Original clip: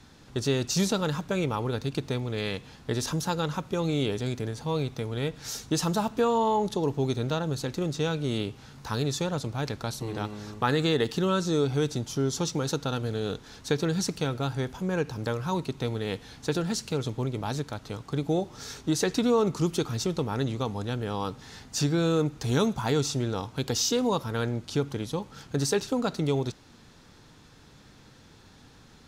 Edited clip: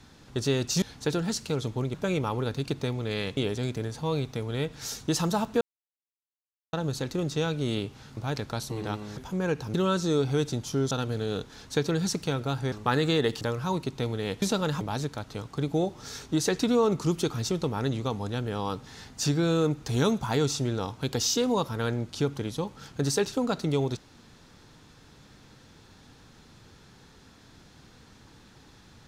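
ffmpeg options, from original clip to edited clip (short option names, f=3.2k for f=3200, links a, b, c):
-filter_complex "[0:a]asplit=14[a][b][c][d][e][f][g][h][i][j][k][l][m][n];[a]atrim=end=0.822[o];[b]atrim=start=16.238:end=17.362[p];[c]atrim=start=1.208:end=2.642[q];[d]atrim=start=3.998:end=6.24,asetpts=PTS-STARTPTS,afade=t=out:st=2.238:d=0.004:c=hsin[r];[e]atrim=start=6.24:end=7.36,asetpts=PTS-STARTPTS,volume=0[s];[f]atrim=start=7.36:end=8.802,asetpts=PTS-STARTPTS,afade=t=in:d=0.004:c=hsin[t];[g]atrim=start=9.478:end=10.482[u];[h]atrim=start=14.658:end=15.232[v];[i]atrim=start=11.168:end=12.342[w];[j]atrim=start=12.848:end=14.662[x];[k]atrim=start=10.478:end=11.172[y];[l]atrim=start=15.228:end=16.242[z];[m]atrim=start=0.818:end=1.212[aa];[n]atrim=start=17.358[ab];[o][p]acrossfade=d=0.004:c1=hsin:c2=hsin[ac];[ac][q]acrossfade=d=0.004:c1=hsin:c2=hsin[ad];[r][s][t]concat=n=3:v=0:a=1[ae];[ad][ae]acrossfade=d=0.004:c1=hsin:c2=hsin[af];[af][u]acrossfade=d=0.004:c1=hsin:c2=hsin[ag];[ag][v]acrossfade=d=0.004:c1=hsin:c2=hsin[ah];[ah][w]acrossfade=d=0.004:c1=hsin:c2=hsin[ai];[ai][x]acrossfade=d=0.004:c1=hsin:c2=hsin[aj];[aj][y]acrossfade=d=0.004:c1=hsin:c2=hsin[ak];[ak][z]acrossfade=d=0.004:c1=hsin:c2=hsin[al];[al][aa]acrossfade=d=0.004:c1=hsin:c2=hsin[am];[am][ab]acrossfade=d=0.004:c1=hsin:c2=hsin"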